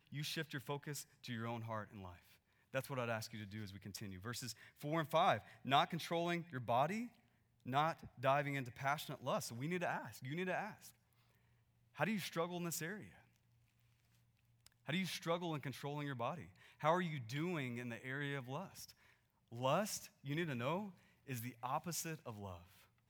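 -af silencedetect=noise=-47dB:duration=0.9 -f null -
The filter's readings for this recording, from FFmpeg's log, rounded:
silence_start: 10.88
silence_end: 11.98 | silence_duration: 1.10
silence_start: 13.04
silence_end: 14.67 | silence_duration: 1.62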